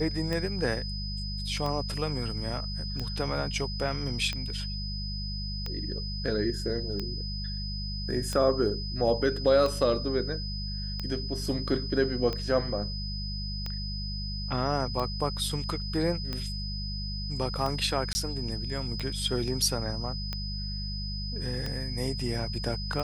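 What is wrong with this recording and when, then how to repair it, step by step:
hum 50 Hz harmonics 4 -35 dBFS
tick 45 rpm -19 dBFS
tone 5000 Hz -37 dBFS
18.13–18.15 gap 20 ms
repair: de-click; notch 5000 Hz, Q 30; de-hum 50 Hz, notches 4; interpolate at 18.13, 20 ms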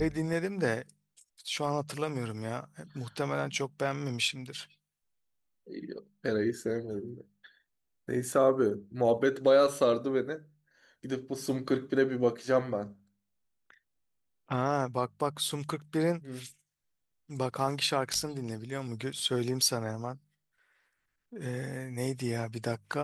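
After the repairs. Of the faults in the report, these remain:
none

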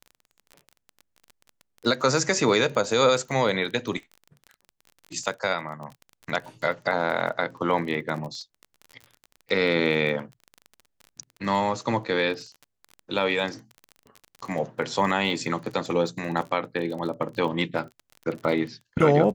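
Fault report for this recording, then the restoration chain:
crackle 25/s -33 dBFS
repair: de-click

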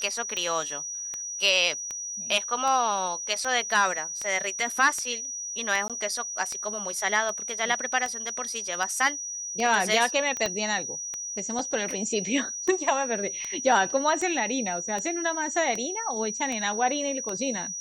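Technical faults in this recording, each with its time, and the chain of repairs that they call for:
tick 78 rpm -18 dBFS
tone 5800 Hz -32 dBFS
5.88–5.9 gap 17 ms
10.46 pop -13 dBFS
11.59 gap 2.8 ms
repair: de-click; notch 5800 Hz, Q 30; interpolate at 5.88, 17 ms; interpolate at 11.59, 2.8 ms

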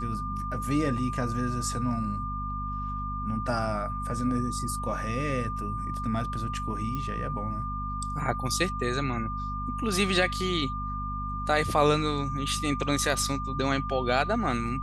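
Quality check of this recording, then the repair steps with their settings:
hum 50 Hz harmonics 5 -35 dBFS
tone 1200 Hz -33 dBFS
6.95 pop -21 dBFS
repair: de-click; de-hum 50 Hz, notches 5; notch 1200 Hz, Q 30

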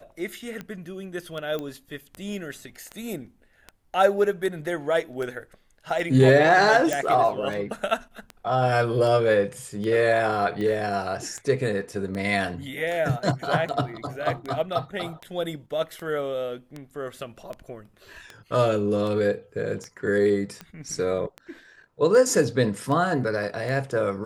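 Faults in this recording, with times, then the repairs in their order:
tick 78 rpm -21 dBFS
1.59 pop -19 dBFS
6.93 pop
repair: de-click

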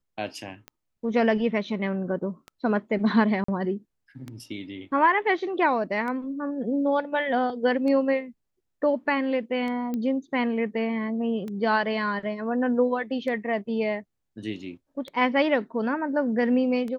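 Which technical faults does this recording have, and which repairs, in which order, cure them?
tick 33 1/3 rpm -23 dBFS
3.44–3.48 gap 44 ms
9.94 pop -19 dBFS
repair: de-click; interpolate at 3.44, 44 ms

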